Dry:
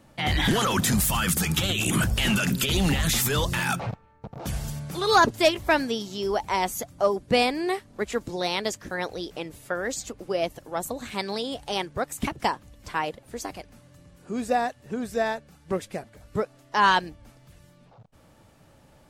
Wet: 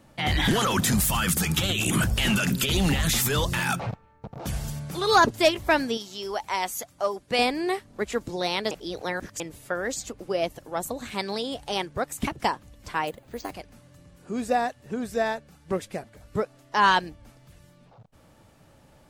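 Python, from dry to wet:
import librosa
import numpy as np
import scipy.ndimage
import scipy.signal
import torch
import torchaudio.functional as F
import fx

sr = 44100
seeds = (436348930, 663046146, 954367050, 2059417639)

y = fx.low_shelf(x, sr, hz=470.0, db=-11.5, at=(5.97, 7.39))
y = fx.resample_bad(y, sr, factor=4, down='filtered', up='hold', at=(13.07, 13.51))
y = fx.edit(y, sr, fx.reverse_span(start_s=8.71, length_s=0.69), tone=tone)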